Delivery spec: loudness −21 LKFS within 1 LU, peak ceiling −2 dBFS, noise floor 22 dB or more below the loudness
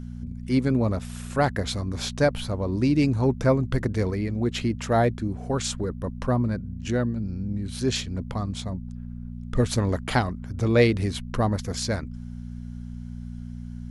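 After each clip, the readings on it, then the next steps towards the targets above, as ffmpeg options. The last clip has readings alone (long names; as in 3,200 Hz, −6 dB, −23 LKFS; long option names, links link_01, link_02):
mains hum 60 Hz; hum harmonics up to 240 Hz; level of the hum −33 dBFS; integrated loudness −25.5 LKFS; sample peak −6.5 dBFS; target loudness −21.0 LKFS
→ -af "bandreject=frequency=60:width_type=h:width=4,bandreject=frequency=120:width_type=h:width=4,bandreject=frequency=180:width_type=h:width=4,bandreject=frequency=240:width_type=h:width=4"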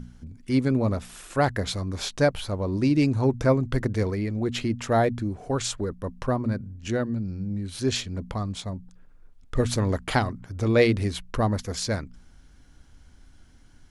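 mains hum none found; integrated loudness −26.5 LKFS; sample peak −6.5 dBFS; target loudness −21.0 LKFS
→ -af "volume=5.5dB,alimiter=limit=-2dB:level=0:latency=1"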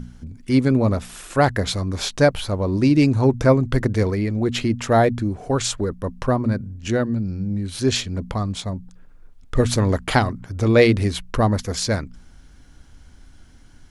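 integrated loudness −21.0 LKFS; sample peak −2.0 dBFS; background noise floor −48 dBFS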